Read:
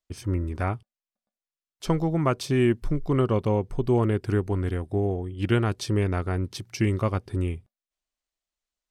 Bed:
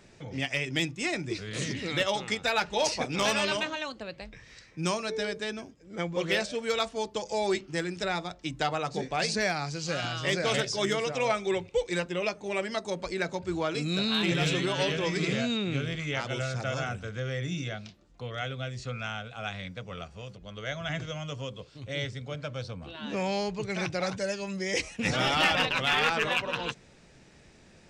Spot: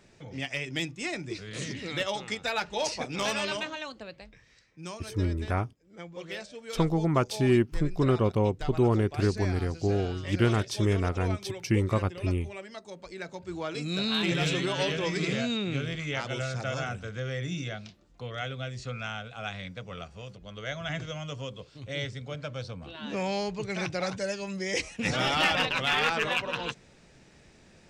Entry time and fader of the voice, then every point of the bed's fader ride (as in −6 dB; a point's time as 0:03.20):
4.90 s, −1.5 dB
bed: 0:04.03 −3 dB
0:04.63 −11 dB
0:12.93 −11 dB
0:14.08 −0.5 dB